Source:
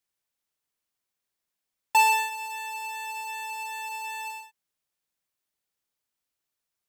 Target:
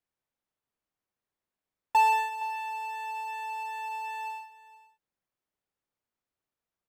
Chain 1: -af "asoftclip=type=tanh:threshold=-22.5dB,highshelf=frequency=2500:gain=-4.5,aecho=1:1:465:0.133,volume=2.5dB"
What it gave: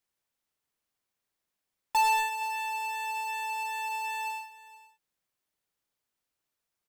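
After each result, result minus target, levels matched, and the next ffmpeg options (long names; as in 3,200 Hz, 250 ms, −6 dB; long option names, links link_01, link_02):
soft clipping: distortion +11 dB; 4,000 Hz band +7.0 dB
-af "asoftclip=type=tanh:threshold=-13.5dB,highshelf=frequency=2500:gain=-4.5,aecho=1:1:465:0.133,volume=2.5dB"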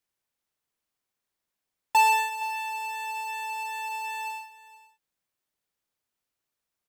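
4,000 Hz band +5.5 dB
-af "asoftclip=type=tanh:threshold=-13.5dB,highshelf=frequency=2500:gain=-16,aecho=1:1:465:0.133,volume=2.5dB"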